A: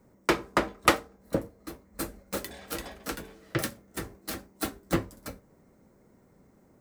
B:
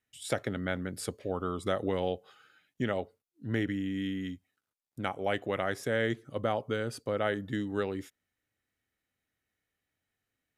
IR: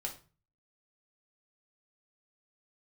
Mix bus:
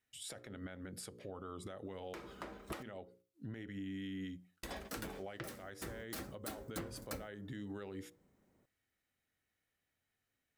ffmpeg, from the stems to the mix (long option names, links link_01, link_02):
-filter_complex "[0:a]agate=range=-14dB:threshold=-49dB:ratio=16:detection=peak,acompressor=threshold=-34dB:ratio=4,adelay=1850,volume=0.5dB,asplit=3[link_01][link_02][link_03];[link_01]atrim=end=2.83,asetpts=PTS-STARTPTS,afade=type=out:start_time=2.826:duration=0.004:curve=hsin[link_04];[link_02]atrim=start=2.83:end=4.63,asetpts=PTS-STARTPTS,volume=0[link_05];[link_03]atrim=start=4.63,asetpts=PTS-STARTPTS,afade=type=in:duration=0.004:curve=hsin[link_06];[link_04][link_05][link_06]concat=n=3:v=0:a=1,asplit=2[link_07][link_08];[link_08]volume=-20.5dB[link_09];[1:a]bandreject=frequency=60:width_type=h:width=6,bandreject=frequency=120:width_type=h:width=6,bandreject=frequency=180:width_type=h:width=6,bandreject=frequency=240:width_type=h:width=6,bandreject=frequency=300:width_type=h:width=6,bandreject=frequency=360:width_type=h:width=6,bandreject=frequency=420:width_type=h:width=6,bandreject=frequency=480:width_type=h:width=6,bandreject=frequency=540:width_type=h:width=6,acompressor=threshold=-36dB:ratio=4,alimiter=level_in=11dB:limit=-24dB:level=0:latency=1:release=148,volume=-11dB,volume=-2dB,asplit=2[link_10][link_11];[link_11]volume=-18dB[link_12];[2:a]atrim=start_sample=2205[link_13];[link_09][link_12]amix=inputs=2:normalize=0[link_14];[link_14][link_13]afir=irnorm=-1:irlink=0[link_15];[link_07][link_10][link_15]amix=inputs=3:normalize=0,alimiter=level_in=6.5dB:limit=-24dB:level=0:latency=1:release=186,volume=-6.5dB"